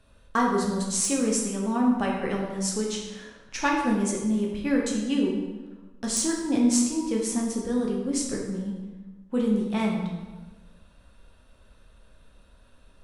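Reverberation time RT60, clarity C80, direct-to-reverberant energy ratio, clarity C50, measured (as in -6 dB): 1.3 s, 5.0 dB, -2.0 dB, 2.5 dB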